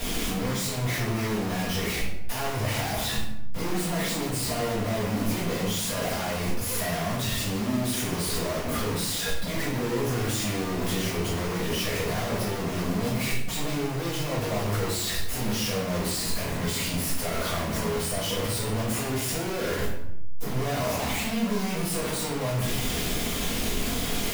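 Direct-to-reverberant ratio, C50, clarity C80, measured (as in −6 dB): −10.0 dB, 2.5 dB, 6.0 dB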